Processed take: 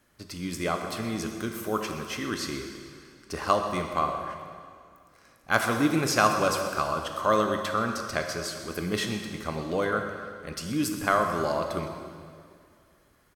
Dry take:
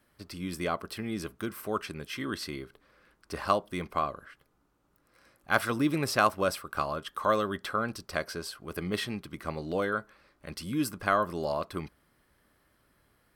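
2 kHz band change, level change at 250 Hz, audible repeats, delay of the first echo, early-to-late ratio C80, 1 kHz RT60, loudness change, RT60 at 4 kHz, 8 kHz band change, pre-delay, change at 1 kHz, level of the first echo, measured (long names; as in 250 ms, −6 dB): +3.5 dB, +3.5 dB, 1, 127 ms, 6.0 dB, 2.2 s, +3.5 dB, 2.0 s, +7.5 dB, 7 ms, +3.5 dB, −15.5 dB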